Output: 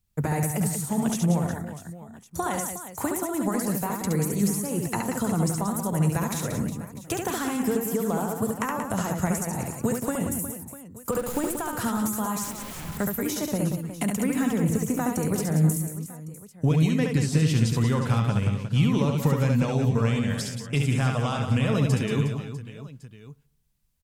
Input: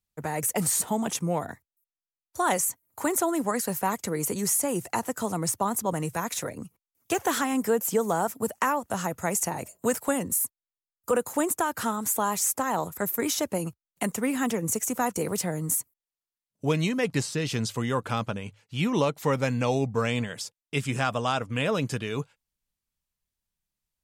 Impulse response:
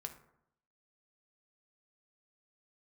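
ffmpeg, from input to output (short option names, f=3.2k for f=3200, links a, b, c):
-filter_complex "[0:a]asettb=1/sr,asplit=3[a][b][c];[a]atrim=end=14.324[d];[b]atrim=start=14.32:end=15.01,asetpts=PTS-STARTPTS,afade=t=in:d=0.004:c=qsin,afade=t=out:st=0.686:d=0.004:c=qsin,deesser=0.75[e];[c]atrim=start=15.006[f];[d][e]acrossfade=d=0.004:c1=hsin:c2=qsin[g];[g][f]acrossfade=d=0.004:c1=qsin:c2=hsin,highshelf=f=4.3k:g=8.5,asettb=1/sr,asplit=3[h][i][j];[h]atrim=end=11.124[k];[i]atrim=start=11.12:end=11.62,asetpts=PTS-STARTPTS,afade=t=in:d=0.004:c=qsin,afade=t=out:st=0.496:d=0.004:c=qsin,acrusher=bits=6:dc=4:mix=0:aa=0.000001[l];[j]atrim=start=11.616[m];[k][l]acrossfade=d=0.004:c1=hsin:c2=qsin[n];[n][m]acrossfade=d=0.004:c1=qsin:c2=hsin,acompressor=threshold=-30dB:ratio=10,asettb=1/sr,asplit=3[o][p][q];[o]atrim=end=12.444[r];[p]atrim=start=12.44:end=12.97,asetpts=PTS-STARTPTS,afade=t=in:d=0.004:c=qsin,afade=t=out:st=0.526:d=0.004:c=qsin,aeval=exprs='(mod(79.4*val(0)+1,2)-1)/79.4':c=same[s];[q]atrim=start=12.966[t];[r][s]acrossfade=d=0.004:c1=hsin:c2=qsin[u];[u][t]acrossfade=d=0.004:c1=qsin:c2=hsin,bass=f=250:g=11,treble=f=4k:g=-4,aecho=1:1:70|182|361.2|647.9|1107:0.631|0.398|0.251|0.158|0.1,asplit=2[v][w];[1:a]atrim=start_sample=2205,lowpass=2.5k[x];[w][x]afir=irnorm=-1:irlink=0,volume=-11dB[y];[v][y]amix=inputs=2:normalize=0,volume=2.5dB"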